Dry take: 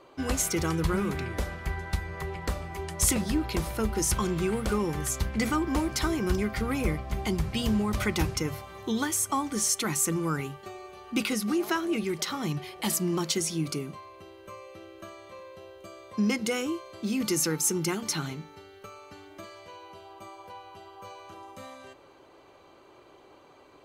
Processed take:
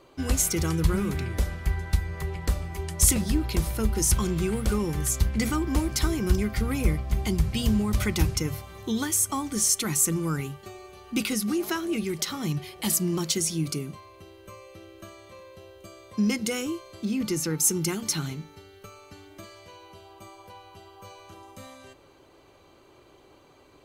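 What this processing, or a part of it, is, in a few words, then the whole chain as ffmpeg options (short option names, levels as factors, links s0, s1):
smiley-face EQ: -filter_complex "[0:a]lowshelf=f=130:g=8.5,equalizer=f=920:t=o:w=2.1:g=-3.5,highshelf=f=5700:g=6,asettb=1/sr,asplit=3[s0][s1][s2];[s0]atrim=end=17.054[s3];[s1]atrim=start=17.05:end=17.6,asetpts=PTS-STARTPTS,afade=t=in:d=0.004:c=qsin,afade=t=out:st=0.546:d=0.004:c=qsin,highshelf=f=4800:g=-11[s4];[s2]atrim=start=17.596[s5];[s3][s4]acrossfade=d=0.004:c1=hsin:c2=qsin[s6];[s6][s5]acrossfade=d=0.004:c1=qsin:c2=hsin"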